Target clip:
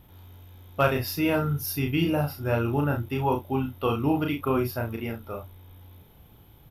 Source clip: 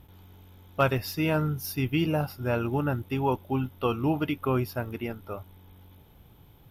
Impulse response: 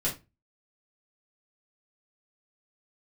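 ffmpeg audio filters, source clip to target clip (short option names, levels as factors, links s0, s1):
-filter_complex "[0:a]aexciter=amount=1.7:drive=1.7:freq=11000,asplit=2[s0][s1];[s1]aecho=0:1:35|67:0.668|0.178[s2];[s0][s2]amix=inputs=2:normalize=0"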